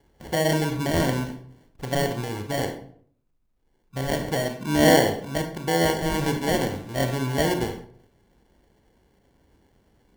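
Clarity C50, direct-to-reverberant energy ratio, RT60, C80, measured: 9.0 dB, 5.5 dB, 0.60 s, 12.5 dB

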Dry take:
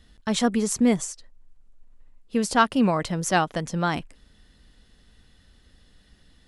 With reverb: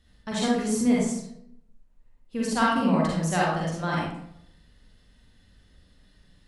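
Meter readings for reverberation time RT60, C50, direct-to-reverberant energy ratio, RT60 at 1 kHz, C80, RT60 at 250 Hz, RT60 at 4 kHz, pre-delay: 0.75 s, -2.5 dB, -5.5 dB, 0.65 s, 3.0 dB, 0.75 s, 0.45 s, 39 ms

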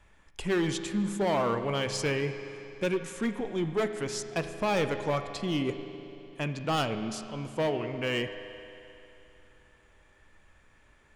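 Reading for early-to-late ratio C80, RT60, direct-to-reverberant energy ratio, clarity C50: 9.5 dB, 3.0 s, 8.0 dB, 9.0 dB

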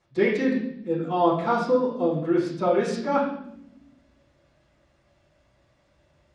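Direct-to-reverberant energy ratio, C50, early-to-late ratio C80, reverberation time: -10.5 dB, 4.5 dB, 7.0 dB, 0.80 s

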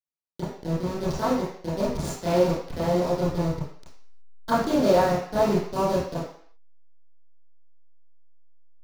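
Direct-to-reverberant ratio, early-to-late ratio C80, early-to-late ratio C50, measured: -11.0 dB, 6.0 dB, 2.0 dB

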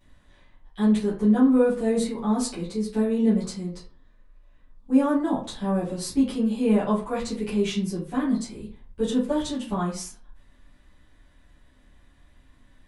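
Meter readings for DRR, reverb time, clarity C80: -11.5 dB, 0.40 s, 12.0 dB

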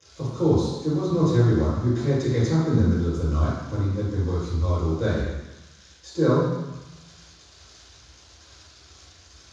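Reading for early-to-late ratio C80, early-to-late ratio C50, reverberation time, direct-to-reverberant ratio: 2.0 dB, -1.5 dB, 1.0 s, -10.5 dB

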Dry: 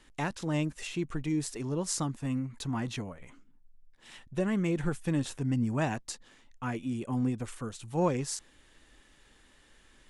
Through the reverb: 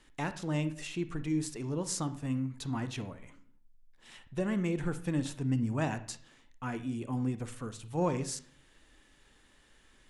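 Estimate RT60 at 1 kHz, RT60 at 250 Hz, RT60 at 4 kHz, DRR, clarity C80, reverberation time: 0.45 s, 0.65 s, 0.45 s, 11.5 dB, 17.5 dB, 0.50 s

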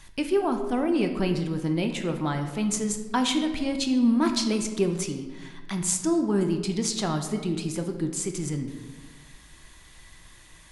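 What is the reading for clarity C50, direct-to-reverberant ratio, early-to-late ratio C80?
8.0 dB, 5.0 dB, 10.0 dB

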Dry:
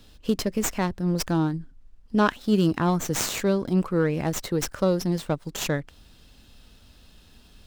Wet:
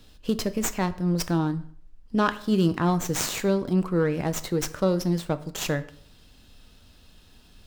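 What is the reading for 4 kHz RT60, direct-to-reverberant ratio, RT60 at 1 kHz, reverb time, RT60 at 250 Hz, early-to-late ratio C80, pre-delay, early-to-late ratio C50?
0.45 s, 11.0 dB, 0.55 s, 0.60 s, 0.60 s, 20.0 dB, 3 ms, 16.5 dB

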